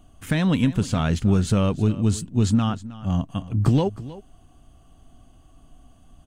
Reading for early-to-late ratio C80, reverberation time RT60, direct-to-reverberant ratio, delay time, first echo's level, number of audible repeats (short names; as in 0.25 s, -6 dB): none, none, none, 0.315 s, -17.0 dB, 1